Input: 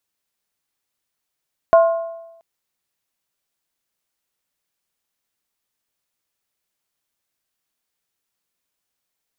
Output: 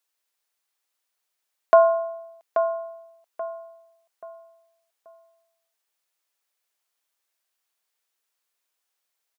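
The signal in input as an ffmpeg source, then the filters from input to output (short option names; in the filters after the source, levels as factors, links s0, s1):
-f lavfi -i "aevalsrc='0.501*pow(10,-3*t/0.97)*sin(2*PI*665*t)+0.178*pow(10,-3*t/0.768)*sin(2*PI*1060*t)+0.0631*pow(10,-3*t/0.664)*sin(2*PI*1420.4*t)':d=0.68:s=44100"
-filter_complex "[0:a]highpass=500,asplit=2[s0][s1];[s1]adelay=832,lowpass=f=1900:p=1,volume=0.422,asplit=2[s2][s3];[s3]adelay=832,lowpass=f=1900:p=1,volume=0.35,asplit=2[s4][s5];[s5]adelay=832,lowpass=f=1900:p=1,volume=0.35,asplit=2[s6][s7];[s7]adelay=832,lowpass=f=1900:p=1,volume=0.35[s8];[s2][s4][s6][s8]amix=inputs=4:normalize=0[s9];[s0][s9]amix=inputs=2:normalize=0"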